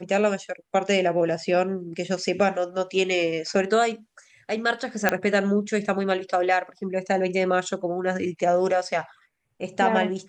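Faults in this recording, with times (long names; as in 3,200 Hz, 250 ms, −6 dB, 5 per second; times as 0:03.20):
0:05.09: click −5 dBFS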